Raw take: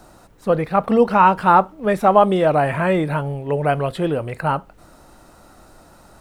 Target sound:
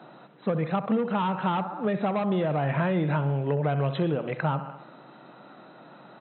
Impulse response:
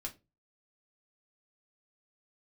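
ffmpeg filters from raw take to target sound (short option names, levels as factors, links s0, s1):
-filter_complex "[0:a]asplit=2[s0][s1];[s1]aecho=0:1:65|130|195|260|325:0.2|0.106|0.056|0.0297|0.0157[s2];[s0][s2]amix=inputs=2:normalize=0,asoftclip=type=tanh:threshold=0.282,acrossover=split=180[s3][s4];[s4]acompressor=threshold=0.0562:ratio=10[s5];[s3][s5]amix=inputs=2:normalize=0,afftfilt=real='re*between(b*sr/4096,120,4100)':imag='im*between(b*sr/4096,120,4100)':win_size=4096:overlap=0.75"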